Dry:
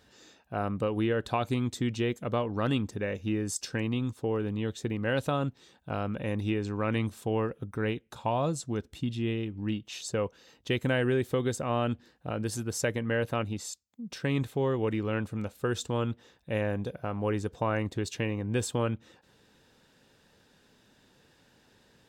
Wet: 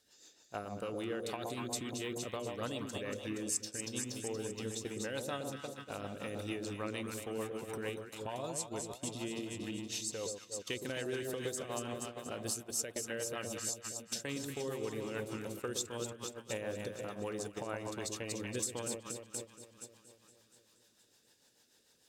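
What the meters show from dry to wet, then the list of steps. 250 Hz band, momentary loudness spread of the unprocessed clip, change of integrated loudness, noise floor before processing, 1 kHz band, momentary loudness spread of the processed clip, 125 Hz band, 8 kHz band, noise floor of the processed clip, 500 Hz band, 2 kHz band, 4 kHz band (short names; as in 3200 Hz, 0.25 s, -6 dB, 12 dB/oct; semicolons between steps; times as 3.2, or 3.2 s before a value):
-10.5 dB, 7 LU, -8.0 dB, -64 dBFS, -10.0 dB, 6 LU, -15.0 dB, +3.0 dB, -69 dBFS, -8.5 dB, -8.0 dB, -2.5 dB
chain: tone controls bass -9 dB, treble +15 dB; echo with dull and thin repeats by turns 0.118 s, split 910 Hz, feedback 80%, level -4 dB; compressor 2.5:1, threshold -41 dBFS, peak gain reduction 16.5 dB; rotary speaker horn 6.7 Hz; gate -44 dBFS, range -12 dB; gain +2 dB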